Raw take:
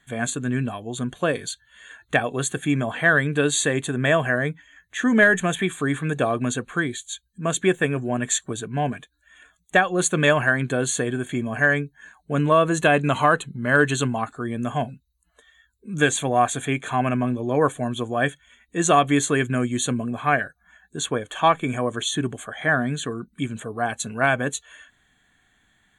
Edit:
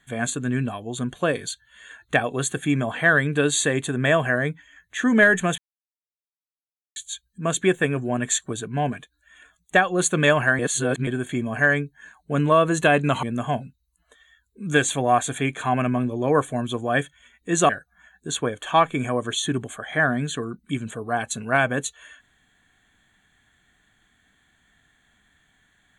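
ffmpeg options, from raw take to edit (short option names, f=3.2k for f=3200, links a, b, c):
-filter_complex "[0:a]asplit=7[a][b][c][d][e][f][g];[a]atrim=end=5.58,asetpts=PTS-STARTPTS,afade=t=out:st=5.576:d=0.004:c=hsin[h];[b]atrim=start=5.58:end=6.96,asetpts=PTS-STARTPTS,volume=0[i];[c]atrim=start=6.96:end=10.592,asetpts=PTS-STARTPTS,afade=t=in:d=0.004:c=hsin[j];[d]atrim=start=10.588:end=11.072,asetpts=PTS-STARTPTS,areverse[k];[e]atrim=start=11.068:end=13.232[l];[f]atrim=start=14.498:end=18.962[m];[g]atrim=start=20.378[n];[h][i][j]concat=n=3:v=0:a=1[o];[o][k]acrossfade=d=0.004:c1=hsin:c2=hsin[p];[p][l]acrossfade=d=0.004:c1=hsin:c2=hsin[q];[q][m]acrossfade=d=0.004:c1=hsin:c2=hsin[r];[r][n]acrossfade=d=0.004:c1=hsin:c2=hsin"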